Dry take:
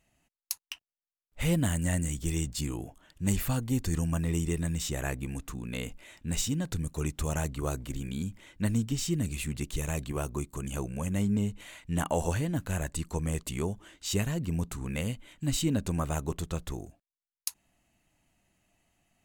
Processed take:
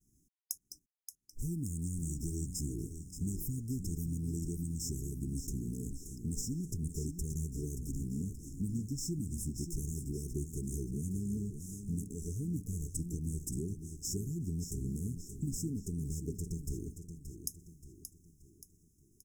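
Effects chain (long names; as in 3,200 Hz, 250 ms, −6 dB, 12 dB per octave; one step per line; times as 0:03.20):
mu-law and A-law mismatch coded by mu
downward expander −57 dBFS
downward compressor, threshold −34 dBFS, peak gain reduction 12.5 dB
linear-phase brick-wall band-stop 450–5,000 Hz
on a send: repeating echo 577 ms, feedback 44%, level −9 dB
on the sum: phaser whose notches keep moving one way rising 0.23 Hz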